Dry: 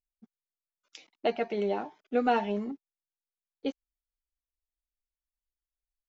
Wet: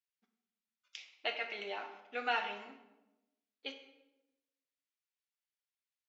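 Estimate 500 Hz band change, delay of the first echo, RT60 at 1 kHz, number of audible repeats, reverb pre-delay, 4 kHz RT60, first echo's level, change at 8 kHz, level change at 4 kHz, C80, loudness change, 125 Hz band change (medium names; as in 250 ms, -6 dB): -14.0 dB, no echo, 0.90 s, no echo, 13 ms, 0.65 s, no echo, no reading, +2.5 dB, 10.5 dB, -8.0 dB, no reading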